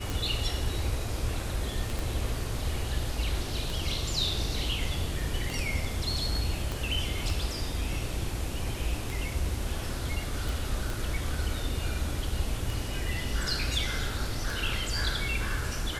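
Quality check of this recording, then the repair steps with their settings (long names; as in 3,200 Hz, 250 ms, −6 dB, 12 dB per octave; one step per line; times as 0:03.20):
scratch tick 33 1/3 rpm
0:01.99: click
0:06.72: click
0:10.49: click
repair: click removal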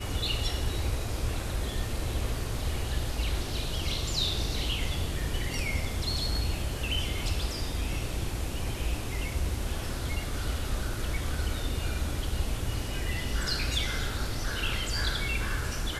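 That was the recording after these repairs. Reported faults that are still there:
0:01.99: click
0:06.72: click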